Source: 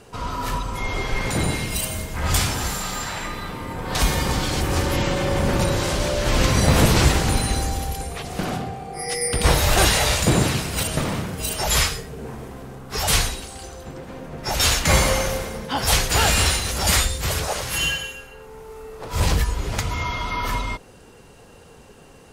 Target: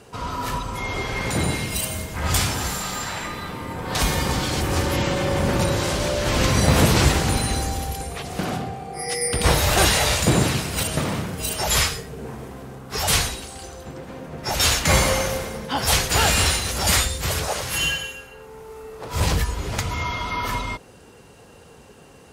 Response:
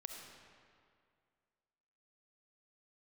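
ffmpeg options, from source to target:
-af "highpass=52"

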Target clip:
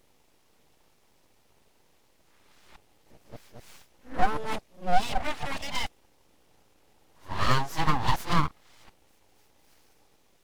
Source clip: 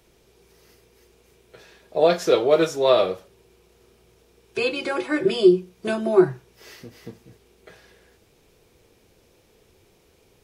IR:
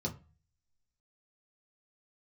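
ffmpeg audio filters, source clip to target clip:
-af "areverse,aeval=exprs='abs(val(0))':channel_layout=same,volume=-4dB"

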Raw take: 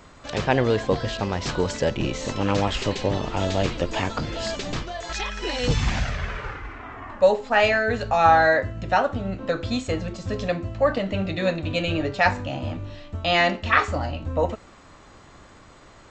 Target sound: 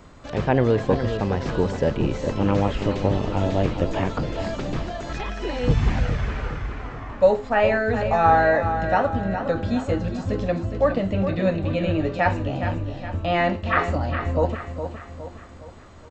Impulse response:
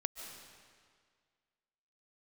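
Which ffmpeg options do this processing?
-filter_complex "[0:a]acrossover=split=2600[link_01][link_02];[link_02]acompressor=threshold=-41dB:ratio=4:attack=1:release=60[link_03];[link_01][link_03]amix=inputs=2:normalize=0,tiltshelf=frequency=680:gain=3.5,aecho=1:1:414|828|1242|1656|2070:0.355|0.167|0.0784|0.0368|0.0173"

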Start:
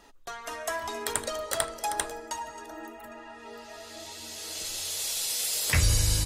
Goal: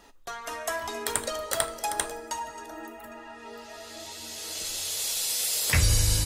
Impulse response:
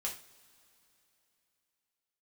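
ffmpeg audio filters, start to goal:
-filter_complex "[0:a]asplit=2[link_01][link_02];[1:a]atrim=start_sample=2205,highshelf=frequency=11000:gain=11.5[link_03];[link_02][link_03]afir=irnorm=-1:irlink=0,volume=-13dB[link_04];[link_01][link_04]amix=inputs=2:normalize=0"

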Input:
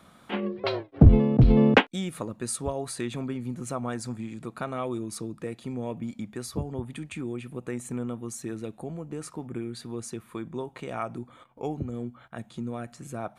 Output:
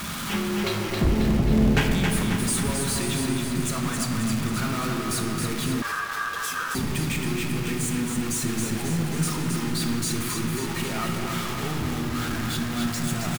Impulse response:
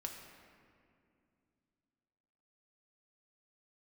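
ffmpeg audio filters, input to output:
-filter_complex "[0:a]aeval=exprs='val(0)+0.5*0.0473*sgn(val(0))':channel_layout=same,equalizer=frequency=550:width=1:gain=-12,asoftclip=type=tanh:threshold=-20dB,aecho=1:1:270|540|810|1080|1350|1620|1890|2160:0.562|0.326|0.189|0.11|0.0636|0.0369|0.0214|0.0124[link_01];[1:a]atrim=start_sample=2205,asetrate=43659,aresample=44100[link_02];[link_01][link_02]afir=irnorm=-1:irlink=0,asettb=1/sr,asplit=3[link_03][link_04][link_05];[link_03]atrim=end=5.824[link_06];[link_04]atrim=start=5.82:end=6.75,asetpts=PTS-STARTPTS,afade=type=in:duration=0.004:curve=qsin,afade=type=out:start_time=0.926:duration=0.004:curve=qsin,aeval=exprs='val(0)*sin(2*PI*1400*n/s)':channel_layout=same[link_07];[link_05]atrim=start=6.746[link_08];[link_06][link_07]acrossfade=duration=0.004:curve1=hsin:curve2=qsin[link_09];[link_09][link_08]acrossfade=duration=0.004:curve1=qsin:curve2=hsin,volume=5dB"

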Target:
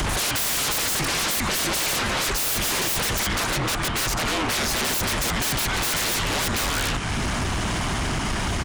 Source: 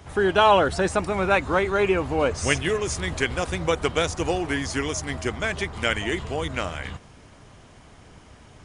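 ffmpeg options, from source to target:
ffmpeg -i in.wav -filter_complex "[0:a]acrossover=split=1100[link_01][link_02];[link_01]acompressor=threshold=-33dB:ratio=6[link_03];[link_03][link_02]amix=inputs=2:normalize=0,asettb=1/sr,asplit=3[link_04][link_05][link_06];[link_04]atrim=end=3.194[link_07];[link_05]atrim=start=3.19:end=4.85,asetpts=PTS-STARTPTS,afade=type=in:duration=0.004:curve=qsin,afade=type=out:start_time=1.656:duration=0.004:curve=qsin,highshelf=frequency=3100:gain=-11[link_08];[link_06]atrim=start=4.846[link_09];[link_07][link_08]acrossfade=duration=0.004:curve1=hsin:curve2=qsin[link_10];[link_10][link_09]acrossfade=duration=0.004:curve1=qsin:curve2=hsin,acompressor=mode=upward:threshold=-31dB:ratio=2.5,highpass=67,equalizer=frequency=550:width_type=o:width=0.46:gain=-12.5,aecho=1:1:266:0.133,afreqshift=-39,aeval=exprs='0.0891*sin(PI/2*7.08*val(0)/0.0891)':channel_layout=same" out.wav

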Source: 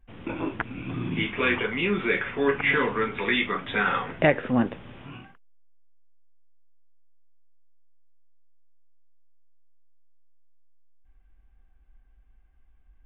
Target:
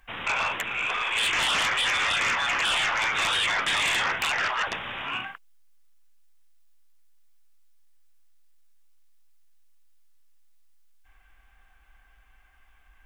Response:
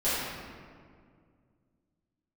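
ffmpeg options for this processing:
-filter_complex "[0:a]afftfilt=real='re*lt(hypot(re,im),0.0708)':imag='im*lt(hypot(re,im),0.0708)':win_size=1024:overlap=0.75,acrossover=split=780[link_01][link_02];[link_02]aeval=exprs='0.112*sin(PI/2*6.31*val(0)/0.112)':channel_layout=same[link_03];[link_01][link_03]amix=inputs=2:normalize=0,volume=-2dB"

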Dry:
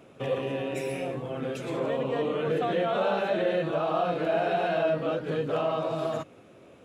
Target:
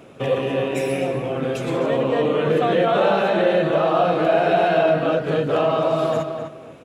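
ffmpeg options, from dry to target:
ffmpeg -i in.wav -filter_complex "[0:a]asplit=2[link_01][link_02];[link_02]adelay=252,lowpass=frequency=2900:poles=1,volume=-6.5dB,asplit=2[link_03][link_04];[link_04]adelay=252,lowpass=frequency=2900:poles=1,volume=0.25,asplit=2[link_05][link_06];[link_06]adelay=252,lowpass=frequency=2900:poles=1,volume=0.25[link_07];[link_01][link_03][link_05][link_07]amix=inputs=4:normalize=0,volume=8dB" out.wav

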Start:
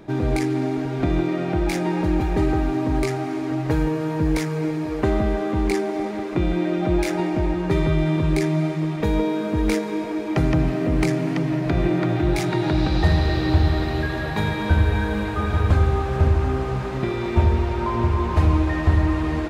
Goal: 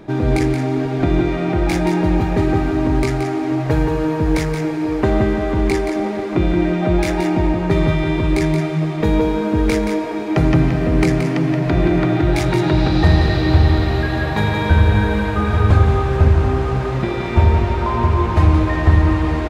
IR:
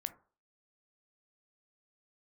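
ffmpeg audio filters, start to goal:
-filter_complex "[0:a]aecho=1:1:175:0.447,asplit=2[link_01][link_02];[1:a]atrim=start_sample=2205,highshelf=frequency=8300:gain=-9[link_03];[link_02][link_03]afir=irnorm=-1:irlink=0,volume=4.5dB[link_04];[link_01][link_04]amix=inputs=2:normalize=0,volume=-3dB"

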